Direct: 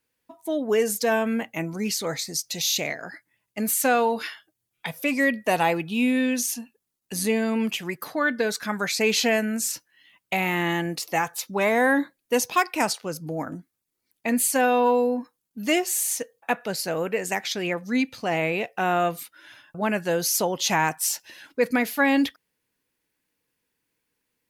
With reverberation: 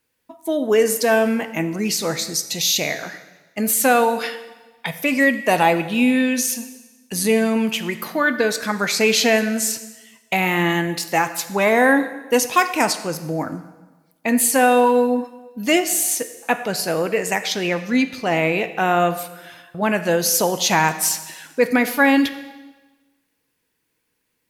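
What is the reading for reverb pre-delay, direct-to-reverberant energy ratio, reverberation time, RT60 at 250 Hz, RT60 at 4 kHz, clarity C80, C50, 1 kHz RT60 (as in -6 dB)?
4 ms, 10.0 dB, 1.2 s, 1.2 s, 1.1 s, 13.5 dB, 12.0 dB, 1.2 s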